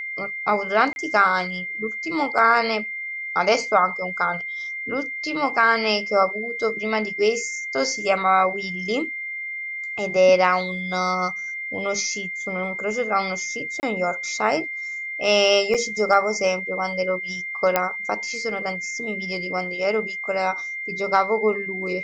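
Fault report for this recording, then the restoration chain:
whine 2.1 kHz -28 dBFS
0.93–0.96 s: dropout 31 ms
13.80–13.83 s: dropout 29 ms
15.74–15.75 s: dropout 5.5 ms
17.76 s: pop -4 dBFS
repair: de-click; band-stop 2.1 kHz, Q 30; interpolate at 0.93 s, 31 ms; interpolate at 13.80 s, 29 ms; interpolate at 15.74 s, 5.5 ms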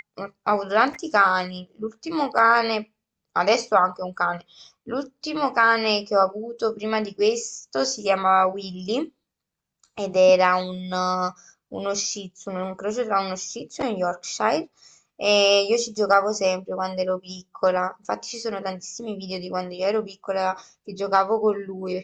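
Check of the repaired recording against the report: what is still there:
nothing left

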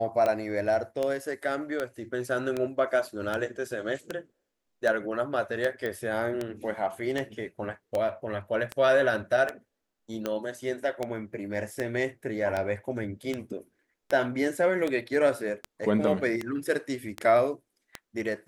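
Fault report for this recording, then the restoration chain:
tick 78 rpm -16 dBFS
5.86 s: pop -20 dBFS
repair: de-click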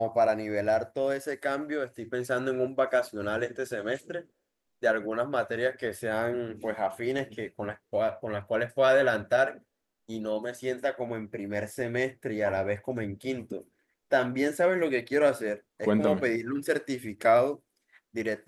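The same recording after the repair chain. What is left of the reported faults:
5.86 s: pop

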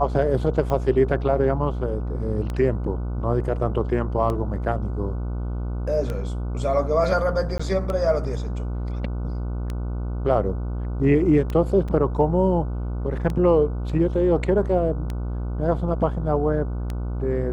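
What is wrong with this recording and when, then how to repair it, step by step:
buzz 60 Hz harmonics 25 -27 dBFS
tick 33 1/3 rpm -16 dBFS
7.58–7.59 s: dropout 15 ms
11.88 s: dropout 4.9 ms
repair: de-click; de-hum 60 Hz, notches 25; interpolate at 7.58 s, 15 ms; interpolate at 11.88 s, 4.9 ms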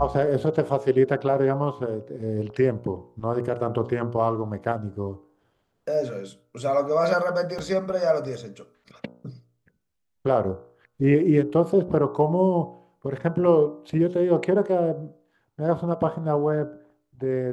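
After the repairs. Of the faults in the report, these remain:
nothing left

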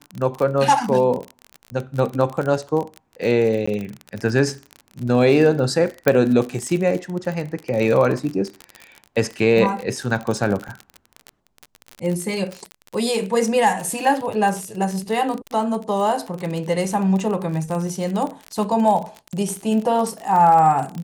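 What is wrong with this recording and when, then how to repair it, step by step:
crackle 35 per s -24 dBFS
3.66–3.67 s: dropout 15 ms
6.08 s: pop -3 dBFS
10.68–10.69 s: dropout 5.2 ms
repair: de-click; interpolate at 3.66 s, 15 ms; interpolate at 10.68 s, 5.2 ms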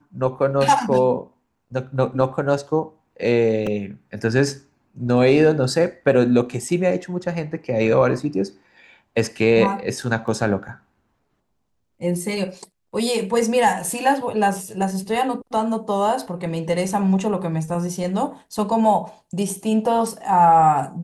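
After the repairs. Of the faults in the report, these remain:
nothing left

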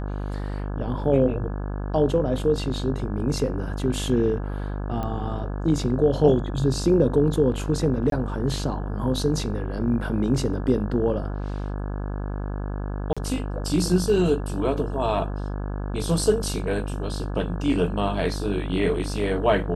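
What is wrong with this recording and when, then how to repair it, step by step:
buzz 50 Hz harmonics 34 -29 dBFS
5.03 s: pop -18 dBFS
8.10–8.12 s: dropout 22 ms
13.13–13.17 s: dropout 36 ms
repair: de-click; de-hum 50 Hz, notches 34; interpolate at 8.10 s, 22 ms; interpolate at 13.13 s, 36 ms

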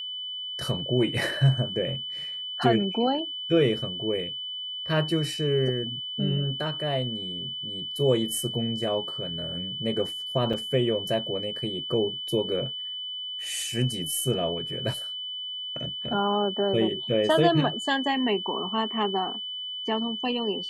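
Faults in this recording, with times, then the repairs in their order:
whine 3 kHz -32 dBFS
10.53 s: dropout 4.8 ms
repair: band-stop 3 kHz, Q 30; interpolate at 10.53 s, 4.8 ms

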